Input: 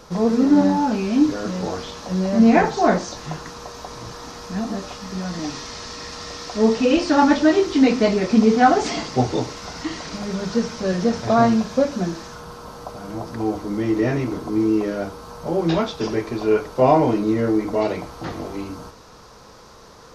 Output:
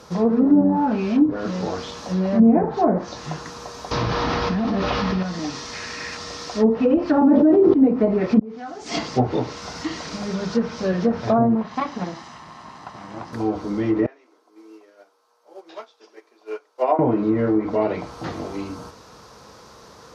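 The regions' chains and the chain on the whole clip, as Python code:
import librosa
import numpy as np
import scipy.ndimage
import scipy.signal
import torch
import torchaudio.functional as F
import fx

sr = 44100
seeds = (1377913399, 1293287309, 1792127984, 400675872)

y = fx.chain(x, sr, fx.delta_mod(bps=32000, step_db=-39.0),
    fx.low_shelf(hz=88.0, db=7.5),
    fx.env_flatten(amount_pct=100), at=(3.91, 5.23))
y = fx.chain(y, sr, fx.highpass(hz=54.0, slope=12),
    fx.band_shelf(hz=2000.0, db=8.5, octaves=1.0), at=(5.73, 6.17))
y = fx.chain(y, sr, fx.highpass(hz=160.0, slope=12),
    fx.peak_eq(hz=1400.0, db=-3.0, octaves=2.1),
    fx.env_flatten(amount_pct=100), at=(7.21, 7.74))
y = fx.chain(y, sr, fx.high_shelf(hz=7200.0, db=7.0),
    fx.gate_flip(shuts_db=-12.0, range_db=-33),
    fx.env_flatten(amount_pct=50), at=(8.39, 8.99))
y = fx.chain(y, sr, fx.lower_of_two(delay_ms=1.0),
    fx.highpass(hz=220.0, slope=6),
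    fx.air_absorb(metres=96.0), at=(11.55, 13.33))
y = fx.chain(y, sr, fx.bessel_highpass(hz=530.0, order=6),
    fx.upward_expand(threshold_db=-30.0, expansion=2.5), at=(14.06, 16.99))
y = scipy.signal.sosfilt(scipy.signal.butter(2, 66.0, 'highpass', fs=sr, output='sos'), y)
y = fx.env_lowpass_down(y, sr, base_hz=570.0, full_db=-11.5)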